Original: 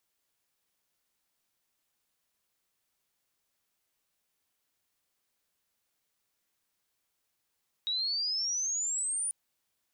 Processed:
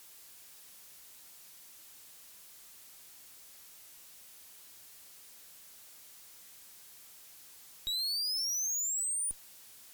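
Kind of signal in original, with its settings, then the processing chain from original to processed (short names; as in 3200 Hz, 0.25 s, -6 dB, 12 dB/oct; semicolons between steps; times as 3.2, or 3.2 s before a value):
chirp logarithmic 3800 Hz -> 9600 Hz -28.5 dBFS -> -29.5 dBFS 1.44 s
zero-crossing step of -51 dBFS; bell 15000 Hz +7.5 dB 2.3 oct; tube stage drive 32 dB, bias 0.65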